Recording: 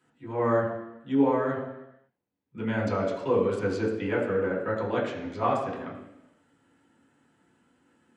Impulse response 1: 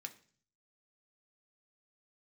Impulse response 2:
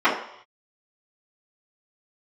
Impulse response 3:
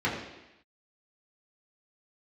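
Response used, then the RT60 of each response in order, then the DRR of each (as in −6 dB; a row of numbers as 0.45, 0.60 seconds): 3; 0.45 s, non-exponential decay, 0.90 s; 4.5, −14.5, −7.5 decibels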